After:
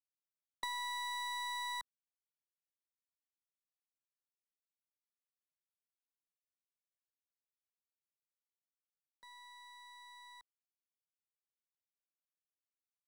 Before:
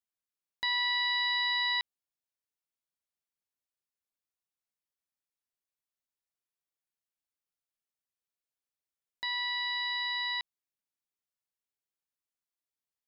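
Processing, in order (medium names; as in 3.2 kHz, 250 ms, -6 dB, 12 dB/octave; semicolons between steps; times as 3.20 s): high-pass 280 Hz 6 dB/octave; waveshaping leveller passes 3; static phaser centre 500 Hz, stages 8; gate with hold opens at -25 dBFS; compression, threshold -35 dBFS, peak gain reduction 7 dB; treble shelf 2.7 kHz -11.5 dB; trim +2 dB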